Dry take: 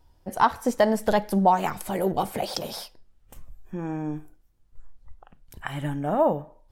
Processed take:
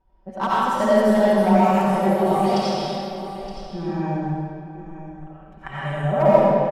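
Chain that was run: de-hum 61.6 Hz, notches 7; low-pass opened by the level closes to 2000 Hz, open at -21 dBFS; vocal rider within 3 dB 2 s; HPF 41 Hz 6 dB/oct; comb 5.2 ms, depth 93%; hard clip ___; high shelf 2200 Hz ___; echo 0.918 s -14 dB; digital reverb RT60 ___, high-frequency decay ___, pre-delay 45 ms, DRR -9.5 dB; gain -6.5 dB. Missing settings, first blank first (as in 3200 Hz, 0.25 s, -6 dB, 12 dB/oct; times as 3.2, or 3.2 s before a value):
-10.5 dBFS, -4 dB, 2.2 s, 0.85×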